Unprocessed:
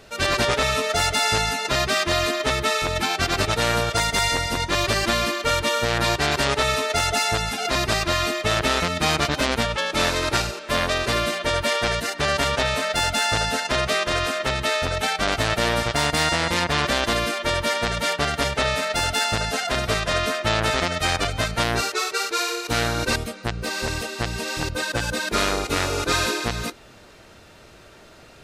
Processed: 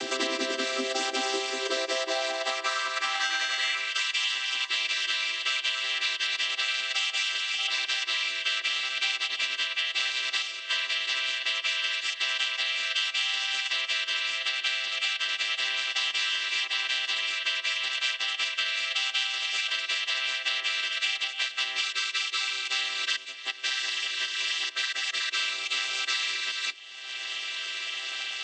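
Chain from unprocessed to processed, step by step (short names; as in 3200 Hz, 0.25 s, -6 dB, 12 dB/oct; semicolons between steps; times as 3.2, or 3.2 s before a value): chord vocoder major triad, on C4; high-pass sweep 130 Hz -> 2900 Hz, 0.13–4.13; 3.13–3.75 flutter echo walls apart 3.7 m, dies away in 0.51 s; three-band squash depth 100%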